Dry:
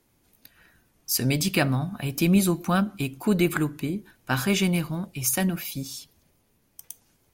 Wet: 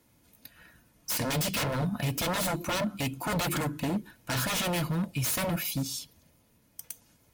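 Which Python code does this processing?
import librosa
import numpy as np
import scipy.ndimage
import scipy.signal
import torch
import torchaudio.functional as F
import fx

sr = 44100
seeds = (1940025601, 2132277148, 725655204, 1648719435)

y = 10.0 ** (-26.0 / 20.0) * (np.abs((x / 10.0 ** (-26.0 / 20.0) + 3.0) % 4.0 - 2.0) - 1.0)
y = fx.notch_comb(y, sr, f0_hz=390.0)
y = y * librosa.db_to_amplitude(3.0)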